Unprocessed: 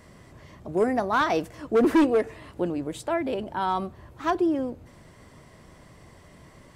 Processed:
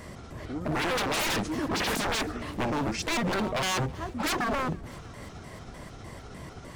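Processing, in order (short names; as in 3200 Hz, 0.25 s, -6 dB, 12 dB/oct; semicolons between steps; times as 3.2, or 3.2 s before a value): trilling pitch shifter -6.5 st, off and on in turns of 0.151 s; pre-echo 0.26 s -21 dB; wavefolder -31 dBFS; on a send: thinning echo 0.32 s, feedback 73%, level -24 dB; on the sum: gain +8 dB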